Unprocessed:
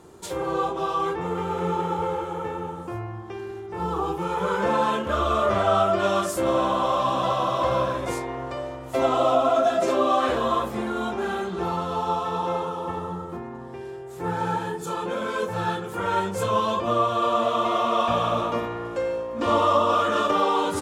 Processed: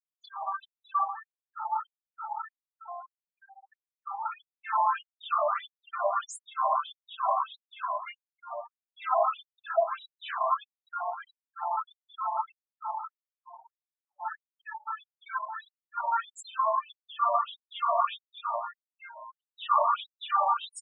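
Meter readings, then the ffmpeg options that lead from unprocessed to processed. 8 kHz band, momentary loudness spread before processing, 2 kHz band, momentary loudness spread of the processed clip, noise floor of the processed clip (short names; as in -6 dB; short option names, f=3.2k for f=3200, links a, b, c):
-11.0 dB, 12 LU, -8.5 dB, 17 LU, under -85 dBFS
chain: -af "afftfilt=real='re*gte(hypot(re,im),0.0316)':imag='im*gte(hypot(re,im),0.0316)':win_size=1024:overlap=0.75,afftfilt=real='re*between(b*sr/1024,800*pow(7300/800,0.5+0.5*sin(2*PI*1.6*pts/sr))/1.41,800*pow(7300/800,0.5+0.5*sin(2*PI*1.6*pts/sr))*1.41)':imag='im*between(b*sr/1024,800*pow(7300/800,0.5+0.5*sin(2*PI*1.6*pts/sr))/1.41,800*pow(7300/800,0.5+0.5*sin(2*PI*1.6*pts/sr))*1.41)':win_size=1024:overlap=0.75"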